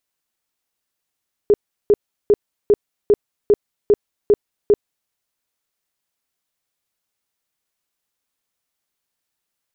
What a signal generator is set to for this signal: tone bursts 413 Hz, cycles 16, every 0.40 s, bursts 9, -8 dBFS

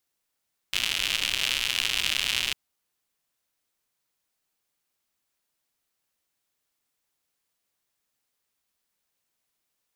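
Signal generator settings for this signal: rain from filtered ticks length 1.80 s, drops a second 140, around 2.9 kHz, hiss -16 dB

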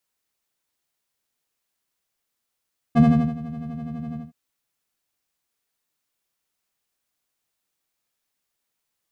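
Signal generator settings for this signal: synth patch with filter wobble D#3, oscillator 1 triangle, oscillator 2 square, interval +7 st, oscillator 2 level -2.5 dB, noise -27.5 dB, filter bandpass, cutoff 160 Hz, Q 0.7, filter envelope 1 oct, filter decay 0.36 s, attack 24 ms, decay 0.37 s, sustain -19 dB, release 0.16 s, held 1.21 s, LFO 12 Hz, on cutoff 0.9 oct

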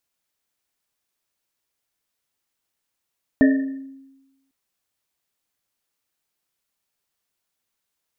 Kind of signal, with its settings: Risset drum, pitch 270 Hz, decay 1.10 s, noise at 1.8 kHz, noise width 110 Hz, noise 15%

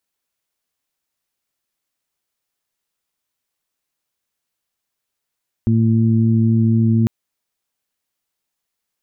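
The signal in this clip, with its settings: steady additive tone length 1.40 s, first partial 113 Hz, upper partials -1/-13 dB, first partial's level -14 dB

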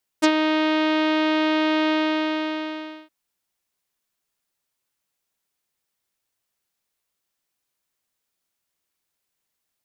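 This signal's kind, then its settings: synth note saw D#4 24 dB/octave, low-pass 3.7 kHz, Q 1.3, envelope 2 oct, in 0.05 s, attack 21 ms, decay 0.07 s, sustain -6.5 dB, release 1.19 s, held 1.68 s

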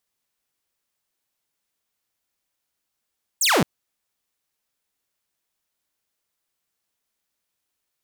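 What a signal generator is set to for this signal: laser zap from 9.1 kHz, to 130 Hz, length 0.22 s saw, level -13 dB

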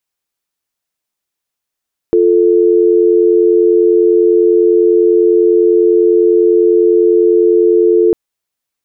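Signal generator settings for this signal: call progress tone dial tone, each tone -9 dBFS 6.00 s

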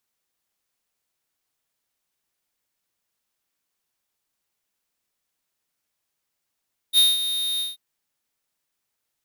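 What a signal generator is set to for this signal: ADSR square 3.7 kHz, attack 50 ms, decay 190 ms, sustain -11 dB, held 0.67 s, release 165 ms -14.5 dBFS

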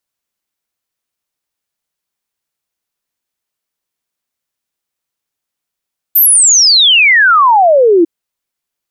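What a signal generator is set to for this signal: log sweep 14 kHz -> 320 Hz 1.90 s -4 dBFS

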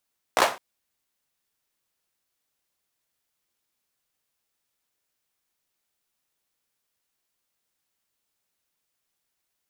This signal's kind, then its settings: hand clap length 0.21 s, apart 16 ms, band 800 Hz, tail 0.30 s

